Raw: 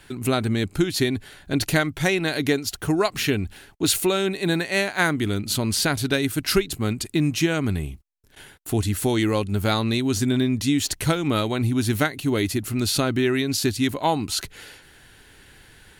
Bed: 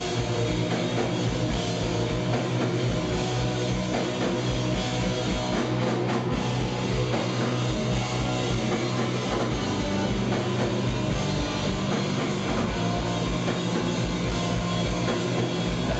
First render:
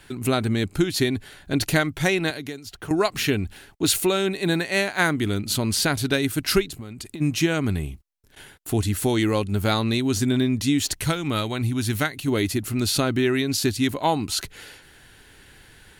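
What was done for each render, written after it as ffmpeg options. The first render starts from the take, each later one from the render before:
-filter_complex "[0:a]asettb=1/sr,asplit=3[a][b][c];[a]atrim=end=2.304[d];[b]atrim=start=2.3:end=2.91,asetpts=PTS-STARTPTS,afade=t=in:d=0.004:c=qsin,afade=t=out:st=0.606:d=0.004:c=qsin,acrossover=split=150|4200[e][f][g];[e]acompressor=threshold=-47dB:ratio=4[h];[f]acompressor=threshold=-34dB:ratio=4[i];[g]acompressor=threshold=-45dB:ratio=4[j];[h][i][j]amix=inputs=3:normalize=0[k];[c]atrim=start=2.906[l];[d][k]acrossfade=d=0.004:c1=hsin:c2=qsin[m];[m][l]acrossfade=d=0.004:c1=qsin:c2=hsin,asplit=3[n][o][p];[n]afade=t=out:st=6.68:d=0.02[q];[o]acompressor=threshold=-31dB:ratio=16:attack=3.2:release=140:knee=1:detection=peak,afade=t=in:st=6.68:d=0.02,afade=t=out:st=7.2:d=0.02[r];[p]afade=t=in:st=7.2:d=0.02[s];[q][r][s]amix=inputs=3:normalize=0,asettb=1/sr,asplit=3[t][u][v];[t]atrim=end=11.004[w];[u]atrim=start=11:end=12.28,asetpts=PTS-STARTPTS,afade=t=in:d=0.004:c=qsin,afade=t=out:st=1.276:d=0.004:c=qsin,equalizer=f=410:w=0.52:g=-4.5[x];[v]atrim=start=12.276[y];[w][x]acrossfade=d=0.004:c1=hsin:c2=qsin[z];[z][y]acrossfade=d=0.004:c1=qsin:c2=hsin"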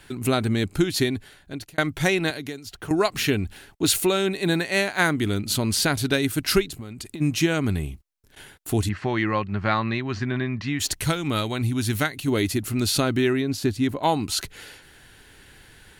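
-filter_complex "[0:a]asplit=3[a][b][c];[a]afade=t=out:st=8.88:d=0.02[d];[b]highpass=110,equalizer=f=270:t=q:w=4:g=-9,equalizer=f=450:t=q:w=4:g=-8,equalizer=f=1.1k:t=q:w=4:g=6,equalizer=f=1.8k:t=q:w=4:g=7,equalizer=f=3.5k:t=q:w=4:g=-10,lowpass=f=4k:w=0.5412,lowpass=f=4k:w=1.3066,afade=t=in:st=8.88:d=0.02,afade=t=out:st=10.79:d=0.02[e];[c]afade=t=in:st=10.79:d=0.02[f];[d][e][f]amix=inputs=3:normalize=0,asettb=1/sr,asplit=3[g][h][i];[g]atrim=end=13.334[j];[h]atrim=start=13.33:end=14.03,asetpts=PTS-STARTPTS,afade=t=in:d=0.004:c=qsin,afade=t=out:st=0.696:d=0.004:c=qsin,highshelf=f=2.1k:g=-10[k];[i]atrim=start=14.026[l];[j][k]acrossfade=d=0.004:c1=hsin:c2=qsin[m];[m][l]acrossfade=d=0.004:c1=qsin:c2=hsin,asplit=2[n][o];[n]atrim=end=1.78,asetpts=PTS-STARTPTS,afade=t=out:st=0.98:d=0.8[p];[o]atrim=start=1.78,asetpts=PTS-STARTPTS,afade=t=in:d=0.004:c=hsin[q];[p][q]concat=n=2:v=0:a=1"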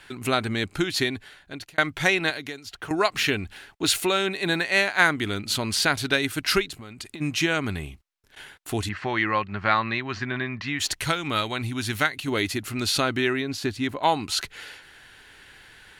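-af "lowpass=f=2.5k:p=1,tiltshelf=f=670:g=-7"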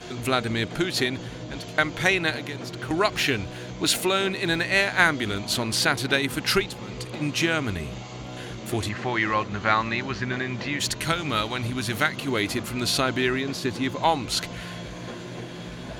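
-filter_complex "[1:a]volume=-10.5dB[a];[0:a][a]amix=inputs=2:normalize=0"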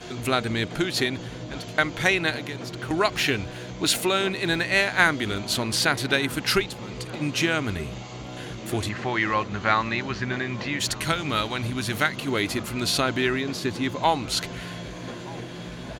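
-filter_complex "[0:a]asplit=2[a][b];[b]adelay=1224,volume=-20dB,highshelf=f=4k:g=-27.6[c];[a][c]amix=inputs=2:normalize=0"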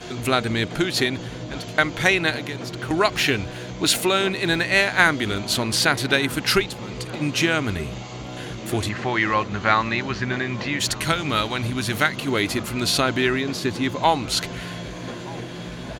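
-af "volume=3dB,alimiter=limit=-1dB:level=0:latency=1"

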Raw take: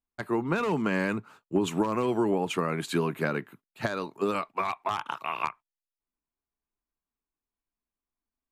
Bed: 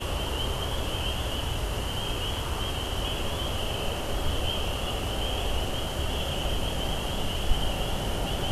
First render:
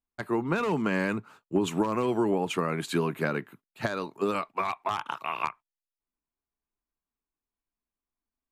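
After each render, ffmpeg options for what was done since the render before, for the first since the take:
-af anull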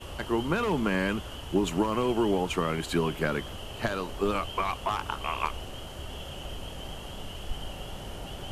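-filter_complex "[1:a]volume=-10dB[a];[0:a][a]amix=inputs=2:normalize=0"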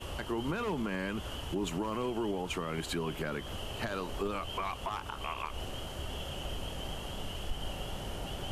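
-af "alimiter=level_in=1dB:limit=-24dB:level=0:latency=1:release=152,volume=-1dB"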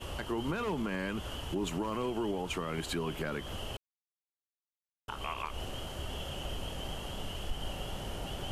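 -filter_complex "[0:a]asplit=3[a][b][c];[a]atrim=end=3.77,asetpts=PTS-STARTPTS,afade=t=out:st=3.766:d=0.004:c=hsin[d];[b]atrim=start=3.77:end=5.08,asetpts=PTS-STARTPTS,volume=0[e];[c]atrim=start=5.08,asetpts=PTS-STARTPTS,afade=t=in:d=0.004:c=hsin[f];[d][e][f]concat=n=3:v=0:a=1"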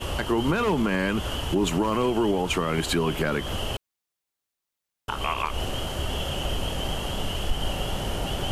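-af "volume=10.5dB"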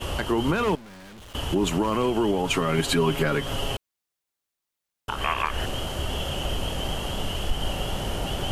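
-filter_complex "[0:a]asettb=1/sr,asplit=3[a][b][c];[a]atrim=end=0.754[d];[b]atrim=start=0.75:end=1.35,asetpts=PTS-STARTPTS,afade=t=in:d=0.004:c=qsin,afade=t=out:st=0.596:d=0.004:c=qsin,aeval=exprs='(tanh(158*val(0)+0.3)-tanh(0.3))/158':c=same[e];[c]atrim=start=1.346[f];[d][e]acrossfade=d=0.004:c1=hsin:c2=qsin[g];[g][f]acrossfade=d=0.004:c1=qsin:c2=hsin,asettb=1/sr,asplit=3[h][i][j];[h]atrim=end=2.434[k];[i]atrim=start=2.43:end=3.75,asetpts=PTS-STARTPTS,afade=t=in:d=0.004:c=qsin,afade=t=out:st=1.316:d=0.004:c=qsin,aecho=1:1:7.3:0.65,atrim=end_sample=58212[l];[j]atrim=start=3.746[m];[k][l]acrossfade=d=0.004:c1=hsin:c2=qsin[n];[n][m]acrossfade=d=0.004:c1=qsin:c2=hsin,asettb=1/sr,asplit=3[o][p][q];[o]atrim=end=5.184[r];[p]atrim=start=5.18:end=5.66,asetpts=PTS-STARTPTS,afade=t=in:d=0.004:c=qsin,afade=t=out:st=0.476:d=0.004:c=qsin,equalizer=f=1.7k:w=3.2:g=12[s];[q]atrim=start=5.656[t];[r][s]acrossfade=d=0.004:c1=hsin:c2=qsin[u];[u][t]acrossfade=d=0.004:c1=qsin:c2=hsin"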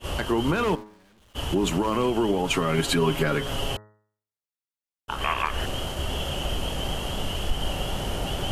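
-af "agate=range=-13dB:threshold=-31dB:ratio=16:detection=peak,bandreject=f=105.9:t=h:w=4,bandreject=f=211.8:t=h:w=4,bandreject=f=317.7:t=h:w=4,bandreject=f=423.6:t=h:w=4,bandreject=f=529.5:t=h:w=4,bandreject=f=635.4:t=h:w=4,bandreject=f=741.3:t=h:w=4,bandreject=f=847.2:t=h:w=4,bandreject=f=953.1:t=h:w=4,bandreject=f=1.059k:t=h:w=4,bandreject=f=1.1649k:t=h:w=4,bandreject=f=1.2708k:t=h:w=4,bandreject=f=1.3767k:t=h:w=4,bandreject=f=1.4826k:t=h:w=4,bandreject=f=1.5885k:t=h:w=4,bandreject=f=1.6944k:t=h:w=4,bandreject=f=1.8003k:t=h:w=4,bandreject=f=1.9062k:t=h:w=4,bandreject=f=2.0121k:t=h:w=4"

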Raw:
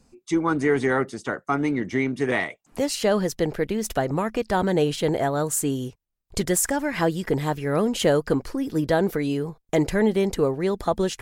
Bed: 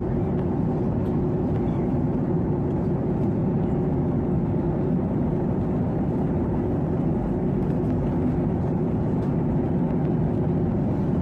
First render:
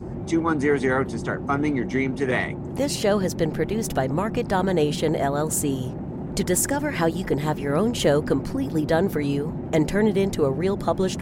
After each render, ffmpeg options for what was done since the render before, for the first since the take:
-filter_complex "[1:a]volume=-8dB[a];[0:a][a]amix=inputs=2:normalize=0"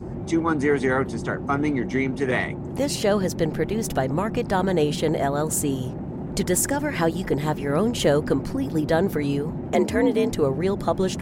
-filter_complex "[0:a]asettb=1/sr,asplit=3[a][b][c];[a]atrim=end=9.744[d];[b]atrim=start=9.74:end=10.31,asetpts=PTS-STARTPTS,afade=t=in:d=0.004:c=qsin,afade=t=out:st=0.566:d=0.004:c=qsin,afreqshift=54[e];[c]atrim=start=10.306[f];[d][e]acrossfade=d=0.004:c1=hsin:c2=qsin[g];[g][f]acrossfade=d=0.004:c1=qsin:c2=hsin"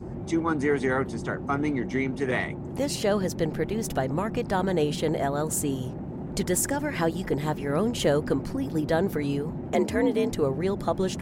-af "volume=-3.5dB"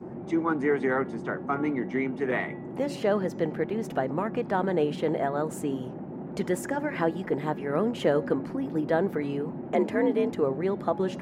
-filter_complex "[0:a]acrossover=split=150 2700:gain=0.0794 1 0.178[a][b][c];[a][b][c]amix=inputs=3:normalize=0,bandreject=f=279.6:t=h:w=4,bandreject=f=559.2:t=h:w=4,bandreject=f=838.8:t=h:w=4,bandreject=f=1.1184k:t=h:w=4,bandreject=f=1.398k:t=h:w=4,bandreject=f=1.6776k:t=h:w=4,bandreject=f=1.9572k:t=h:w=4,bandreject=f=2.2368k:t=h:w=4,bandreject=f=2.5164k:t=h:w=4,bandreject=f=2.796k:t=h:w=4,bandreject=f=3.0756k:t=h:w=4,bandreject=f=3.3552k:t=h:w=4,bandreject=f=3.6348k:t=h:w=4,bandreject=f=3.9144k:t=h:w=4,bandreject=f=4.194k:t=h:w=4,bandreject=f=4.4736k:t=h:w=4,bandreject=f=4.7532k:t=h:w=4,bandreject=f=5.0328k:t=h:w=4,bandreject=f=5.3124k:t=h:w=4,bandreject=f=5.592k:t=h:w=4,bandreject=f=5.8716k:t=h:w=4,bandreject=f=6.1512k:t=h:w=4,bandreject=f=6.4308k:t=h:w=4,bandreject=f=6.7104k:t=h:w=4,bandreject=f=6.99k:t=h:w=4,bandreject=f=7.2696k:t=h:w=4"

